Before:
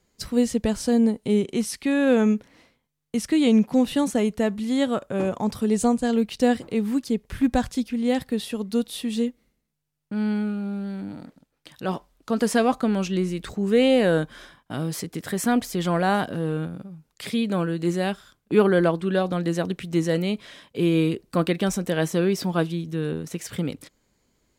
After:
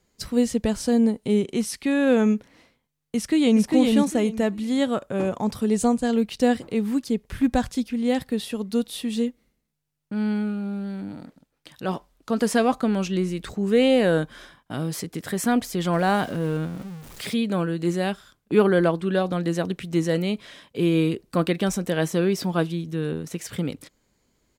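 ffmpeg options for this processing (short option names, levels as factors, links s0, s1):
-filter_complex "[0:a]asplit=2[s0][s1];[s1]afade=t=in:st=3.16:d=0.01,afade=t=out:st=3.67:d=0.01,aecho=0:1:400|800|1200:0.707946|0.141589|0.0283178[s2];[s0][s2]amix=inputs=2:normalize=0,asettb=1/sr,asplit=3[s3][s4][s5];[s3]atrim=end=15.934[s6];[s4]atrim=start=15.93:end=17.34,asetpts=PTS-STARTPTS,afade=t=in:d=0.004:c=qsin,afade=t=out:st=1.406:d=0.004:c=qsin,aeval=exprs='val(0)+0.5*0.0133*sgn(val(0))':c=same[s7];[s5]atrim=start=17.336[s8];[s6][s7]acrossfade=d=0.004:c1=hsin:c2=qsin[s9];[s9][s8]acrossfade=d=0.004:c1=qsin:c2=hsin"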